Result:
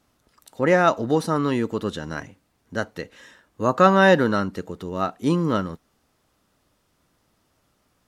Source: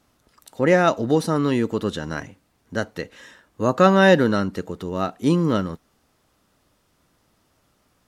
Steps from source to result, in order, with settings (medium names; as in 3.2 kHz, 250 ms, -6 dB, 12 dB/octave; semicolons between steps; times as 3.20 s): dynamic bell 1.1 kHz, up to +5 dB, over -30 dBFS, Q 1.1; trim -2.5 dB